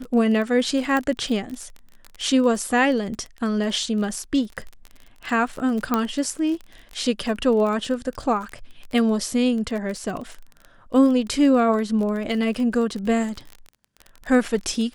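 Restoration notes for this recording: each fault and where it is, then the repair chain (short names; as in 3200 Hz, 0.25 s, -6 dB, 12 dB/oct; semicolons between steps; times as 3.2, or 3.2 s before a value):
crackle 27/s -29 dBFS
0.97 pop -12 dBFS
5.94 pop -7 dBFS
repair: de-click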